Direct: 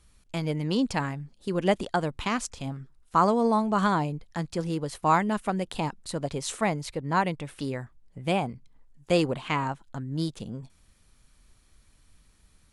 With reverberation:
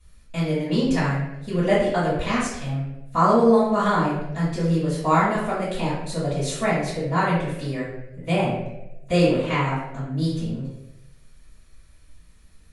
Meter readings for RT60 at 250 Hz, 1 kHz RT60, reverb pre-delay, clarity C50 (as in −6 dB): 0.90 s, 0.75 s, 3 ms, 1.0 dB